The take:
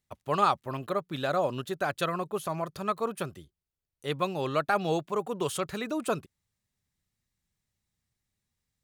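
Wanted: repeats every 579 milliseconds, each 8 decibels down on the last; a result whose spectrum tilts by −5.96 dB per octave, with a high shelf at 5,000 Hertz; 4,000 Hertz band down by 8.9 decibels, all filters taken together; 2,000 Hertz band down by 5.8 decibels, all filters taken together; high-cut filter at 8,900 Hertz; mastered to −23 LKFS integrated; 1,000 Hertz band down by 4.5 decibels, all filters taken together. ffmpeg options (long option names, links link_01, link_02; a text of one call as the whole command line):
ffmpeg -i in.wav -af "lowpass=8900,equalizer=frequency=1000:width_type=o:gain=-4,equalizer=frequency=2000:width_type=o:gain=-4,equalizer=frequency=4000:width_type=o:gain=-6,highshelf=frequency=5000:gain=-8.5,aecho=1:1:579|1158|1737|2316|2895:0.398|0.159|0.0637|0.0255|0.0102,volume=10dB" out.wav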